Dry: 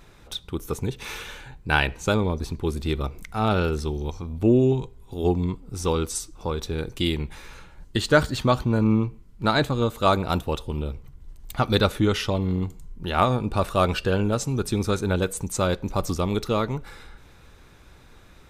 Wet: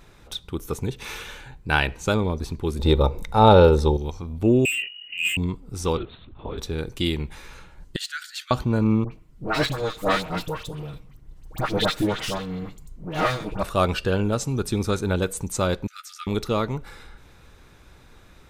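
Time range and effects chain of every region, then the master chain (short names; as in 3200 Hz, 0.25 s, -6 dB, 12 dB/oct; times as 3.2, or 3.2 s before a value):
2.79–3.97 low shelf 190 Hz +9 dB + small resonant body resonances 530/860/3700 Hz, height 16 dB, ringing for 25 ms
4.65–5.37 inverted band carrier 2900 Hz + hard clip -21 dBFS + doubler 23 ms -4 dB
5.97–6.58 compressor 2:1, threshold -31 dBFS + LPC vocoder at 8 kHz whisper
7.96–8.51 compressor 2:1, threshold -26 dBFS + steep high-pass 1400 Hz 72 dB/oct + hard clip -23.5 dBFS
9.04–13.63 minimum comb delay 6.4 ms + dispersion highs, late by 80 ms, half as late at 1500 Hz
15.87–16.27 brick-wall FIR high-pass 1200 Hz + tilt -2 dB/oct + doubler 14 ms -10.5 dB
whole clip: dry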